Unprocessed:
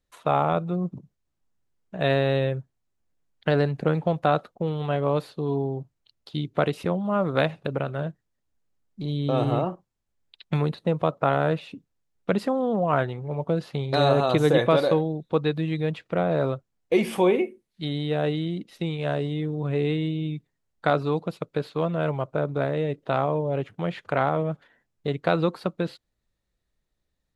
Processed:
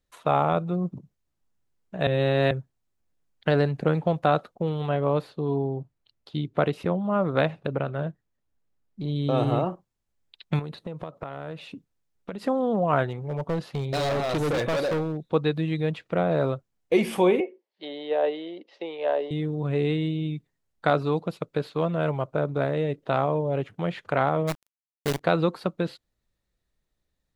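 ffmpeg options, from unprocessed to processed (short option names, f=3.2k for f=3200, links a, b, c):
-filter_complex "[0:a]asettb=1/sr,asplit=3[a][b][c];[a]atrim=end=4.894[d];[b]atrim=start=4.89:end=9.16,asetpts=PTS-STARTPTS,afade=t=in:d=0.004:c=qsin,afade=t=out:st=4.266:d=0.004:c=qsin,highshelf=f=4.3k:g=-8[e];[c]atrim=start=9.156[f];[d][e]acrossfade=d=0.004:c1=hsin:c2=qsin[g];[g][f]acrossfade=d=0.004:c1=qsin:c2=hsin,asettb=1/sr,asplit=3[h][i][j];[h]atrim=end=10.594[k];[i]atrim=start=10.59:end=12.45,asetpts=PTS-STARTPTS,afade=t=in:d=0.004:c=qsin,afade=t=out:st=1.856:d=0.004:c=qsin,acompressor=threshold=-30dB:ratio=16:attack=3.2:release=140:knee=1:detection=peak[l];[j]atrim=start=12.446[m];[k][l]acrossfade=d=0.004:c1=hsin:c2=qsin[n];[n][m]acrossfade=d=0.004:c1=qsin:c2=hsin,asettb=1/sr,asplit=3[o][p][q];[o]atrim=end=13.064[r];[p]atrim=start=13.06:end=15.21,asetpts=PTS-STARTPTS,afade=t=in:d=0.004:c=qsin,afade=t=out:st=2.146:d=0.004:c=qsin,volume=23dB,asoftclip=hard,volume=-23dB[s];[q]atrim=start=15.206[t];[r][s]acrossfade=d=0.004:c1=hsin:c2=qsin[u];[u][t]acrossfade=d=0.004:c1=qsin:c2=hsin,asettb=1/sr,asplit=3[v][w][x];[v]atrim=end=17.404[y];[w]atrim=start=17.4:end=19.31,asetpts=PTS-STARTPTS,afade=t=in:d=0.004:c=qsin,afade=t=out:st=1.906:d=0.004:c=qsin,highpass=f=370:w=0.5412,highpass=f=370:w=1.3066,equalizer=f=560:t=q:w=4:g=6,equalizer=f=880:t=q:w=4:g=5,equalizer=f=1.4k:t=q:w=4:g=-7,equalizer=f=2.4k:t=q:w=4:g=-4,equalizer=f=3.8k:t=q:w=4:g=-7,lowpass=f=4.5k:w=0.5412,lowpass=f=4.5k:w=1.3066[z];[x]atrim=start=19.306[aa];[y][z]acrossfade=d=0.004:c1=hsin:c2=qsin[ab];[ab][aa]acrossfade=d=0.004:c1=qsin:c2=hsin,asplit=3[ac][ad][ae];[ac]afade=t=out:st=24.47:d=0.02[af];[ad]acrusher=bits=5:dc=4:mix=0:aa=0.000001,afade=t=in:st=24.47:d=0.02,afade=t=out:st=25.19:d=0.02[ag];[ae]afade=t=in:st=25.19:d=0.02[ah];[af][ag][ah]amix=inputs=3:normalize=0,asplit=3[ai][aj][ak];[ai]atrim=end=2.072[al];[aj]atrim=start=2.068:end=2.512,asetpts=PTS-STARTPTS,areverse[am];[ak]atrim=start=2.508[an];[al][am]acrossfade=d=0.004:c1=hsin:c2=hsin[ao];[ao][an]acrossfade=d=0.004:c1=hsin:c2=hsin"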